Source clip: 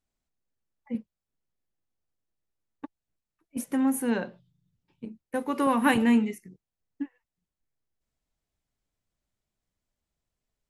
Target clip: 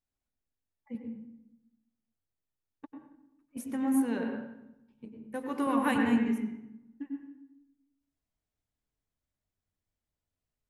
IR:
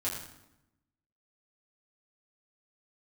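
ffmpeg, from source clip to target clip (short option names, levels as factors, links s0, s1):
-filter_complex "[0:a]asplit=2[s0][s1];[1:a]atrim=start_sample=2205,lowpass=2800,adelay=94[s2];[s1][s2]afir=irnorm=-1:irlink=0,volume=0.531[s3];[s0][s3]amix=inputs=2:normalize=0,volume=0.422"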